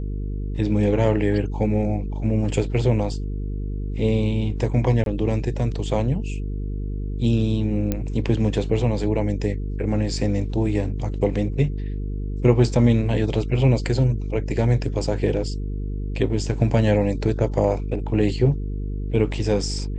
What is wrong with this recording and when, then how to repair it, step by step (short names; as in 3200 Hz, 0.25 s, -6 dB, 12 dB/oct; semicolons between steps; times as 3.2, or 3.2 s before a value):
buzz 50 Hz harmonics 9 -27 dBFS
5.04–5.06 gap 22 ms
7.92 pop -10 dBFS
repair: de-click; de-hum 50 Hz, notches 9; interpolate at 5.04, 22 ms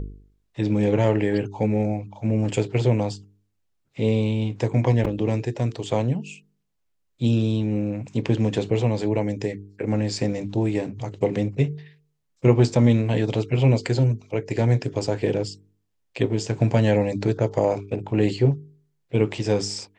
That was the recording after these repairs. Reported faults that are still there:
none